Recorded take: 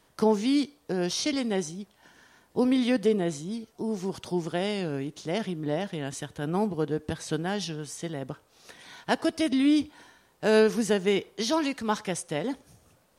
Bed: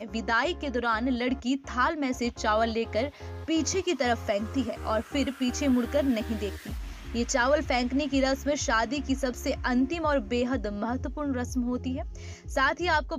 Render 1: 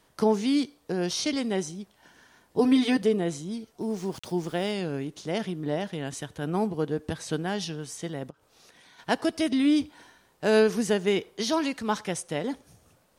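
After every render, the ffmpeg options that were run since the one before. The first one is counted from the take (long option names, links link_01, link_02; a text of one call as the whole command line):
ffmpeg -i in.wav -filter_complex "[0:a]asettb=1/sr,asplit=3[link_01][link_02][link_03];[link_01]atrim=end=2.584[link_04];[link_02]atrim=start=2.58:end=3.02,asetpts=PTS-STARTPTS,afade=type=in:duration=0.004:curve=qsin,afade=type=out:start_time=0.436:duration=0.004:curve=qsin,aecho=1:1:6.8:0.95,atrim=end_sample=19404[link_05];[link_03]atrim=start=3.016[link_06];[link_04][link_05]acrossfade=duration=0.004:curve1=hsin:curve2=qsin[link_07];[link_07][link_06]acrossfade=duration=0.004:curve1=qsin:curve2=hsin,asettb=1/sr,asplit=3[link_08][link_09][link_10];[link_08]atrim=end=3.814[link_11];[link_09]atrim=start=3.81:end=4.72,asetpts=PTS-STARTPTS,afade=type=in:duration=0.004:curve=qsin,afade=type=out:start_time=0.906:duration=0.004:curve=qsin,aeval=exprs='val(0)*gte(abs(val(0)),0.00473)':channel_layout=same[link_12];[link_10]atrim=start=4.716[link_13];[link_11][link_12]acrossfade=duration=0.004:curve1=hsin:curve2=qsin[link_14];[link_14][link_13]acrossfade=duration=0.004:curve1=qsin:curve2=hsin,asplit=3[link_15][link_16][link_17];[link_15]afade=type=out:start_time=8.29:duration=0.02[link_18];[link_16]acompressor=threshold=-51dB:ratio=16:attack=3.2:release=140:knee=1:detection=peak,afade=type=in:start_time=8.29:duration=0.02,afade=type=out:start_time=8.98:duration=0.02[link_19];[link_17]afade=type=in:start_time=8.98:duration=0.02[link_20];[link_18][link_19][link_20]amix=inputs=3:normalize=0" out.wav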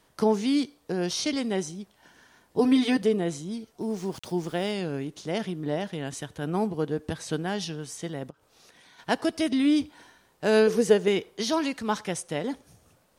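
ffmpeg -i in.wav -filter_complex "[0:a]asettb=1/sr,asplit=3[link_01][link_02][link_03];[link_01]atrim=end=10.674[link_04];[link_02]atrim=start=10.67:end=11.08,asetpts=PTS-STARTPTS,afade=type=in:duration=0.004:curve=qsin,afade=type=out:start_time=0.406:duration=0.004:curve=qsin,equalizer=frequency=470:width_type=o:width=0.3:gain=13[link_05];[link_03]atrim=start=11.076[link_06];[link_04][link_05]acrossfade=duration=0.004:curve1=hsin:curve2=qsin[link_07];[link_07][link_06]acrossfade=duration=0.004:curve1=qsin:curve2=hsin" out.wav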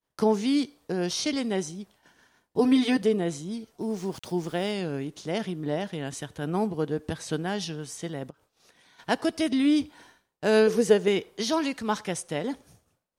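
ffmpeg -i in.wav -af "agate=range=-33dB:threshold=-51dB:ratio=3:detection=peak" out.wav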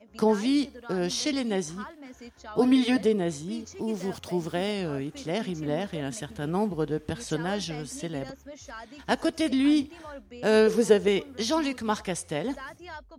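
ffmpeg -i in.wav -i bed.wav -filter_complex "[1:a]volume=-16.5dB[link_01];[0:a][link_01]amix=inputs=2:normalize=0" out.wav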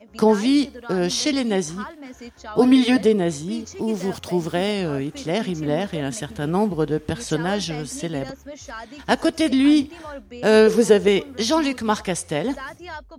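ffmpeg -i in.wav -af "volume=6.5dB,alimiter=limit=-3dB:level=0:latency=1" out.wav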